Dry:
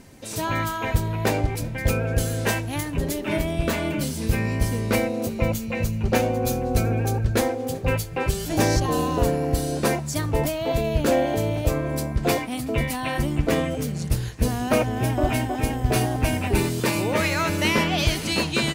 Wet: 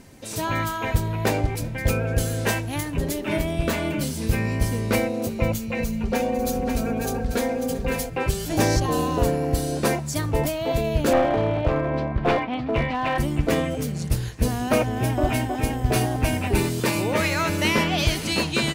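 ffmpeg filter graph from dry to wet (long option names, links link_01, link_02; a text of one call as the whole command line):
ffmpeg -i in.wav -filter_complex "[0:a]asettb=1/sr,asplit=3[link_01][link_02][link_03];[link_01]atrim=end=5.784[link_04];[link_02]atrim=start=5.78:end=8.1,asetpts=PTS-STARTPTS,afade=type=in:duration=0.004:curve=qsin,afade=type=out:start_time=2.316:duration=0.004:curve=qsin,aecho=1:1:4.3:0.78,atrim=end_sample=102312,aecho=1:1:544:0.335,atrim=end_sample=102312,acompressor=threshold=-21dB:ratio=2.5:attack=3.2:release=140:knee=1:detection=peak[link_05];[link_03]atrim=start=8.096[link_06];[link_04][link_05]acrossfade=duration=0.004:curve1=hsin:curve2=qsin[link_07];[link_07][link_06]acrossfade=duration=0.004:curve1=qsin:curve2=hsin,asettb=1/sr,asplit=3[link_08][link_09][link_10];[link_08]atrim=end=11.134[link_11];[link_09]atrim=start=11.13:end=13.18,asetpts=PTS-STARTPTS,afade=type=in:duration=0.004:curve=qsin,afade=type=out:start_time=2.046:duration=0.004:curve=qsin,lowpass=frequency=3500:width=0.5412,lowpass=frequency=3500:width=1.3066,equalizer=frequency=880:width_type=o:width=1.7:gain=6,aeval=exprs='clip(val(0),-1,0.112)':channel_layout=same[link_12];[link_10]atrim=start=13.176[link_13];[link_11][link_12]acrossfade=duration=0.004:curve1=hsin:curve2=qsin[link_14];[link_14][link_13]acrossfade=duration=0.004:curve1=qsin:curve2=hsin" out.wav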